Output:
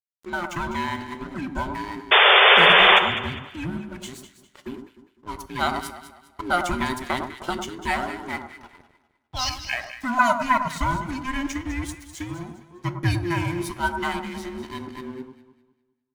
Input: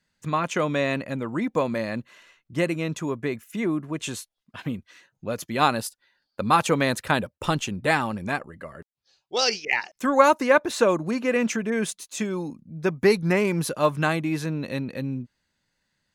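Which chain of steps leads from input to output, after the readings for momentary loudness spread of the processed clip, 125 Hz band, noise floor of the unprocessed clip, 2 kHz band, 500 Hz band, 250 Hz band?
24 LU, -1.5 dB, -81 dBFS, +7.0 dB, -4.5 dB, -4.0 dB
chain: band inversion scrambler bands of 500 Hz; notches 50/100/150/200/250 Hz; crossover distortion -38.5 dBFS; painted sound noise, 2.11–2.99, 370–3600 Hz -11 dBFS; on a send: echo with dull and thin repeats by turns 0.101 s, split 1400 Hz, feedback 56%, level -6.5 dB; on the sum: two-slope reverb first 0.32 s, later 1.6 s, DRR 12 dB; gain -3 dB

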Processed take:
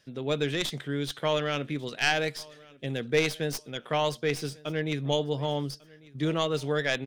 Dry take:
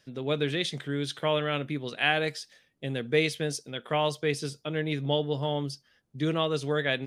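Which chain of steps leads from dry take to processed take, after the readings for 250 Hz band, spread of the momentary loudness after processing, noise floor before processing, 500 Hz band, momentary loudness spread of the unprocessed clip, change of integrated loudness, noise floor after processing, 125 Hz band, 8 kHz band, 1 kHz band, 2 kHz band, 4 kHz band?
-0.5 dB, 10 LU, -68 dBFS, 0.0 dB, 9 LU, 0.0 dB, -55 dBFS, -0.5 dB, +2.0 dB, 0.0 dB, 0.0 dB, 0.0 dB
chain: tracing distortion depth 0.072 ms; on a send: feedback echo 1.146 s, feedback 29%, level -23.5 dB

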